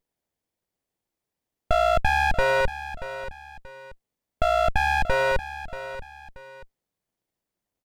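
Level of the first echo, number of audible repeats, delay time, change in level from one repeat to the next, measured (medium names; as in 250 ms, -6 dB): -13.0 dB, 2, 632 ms, -9.0 dB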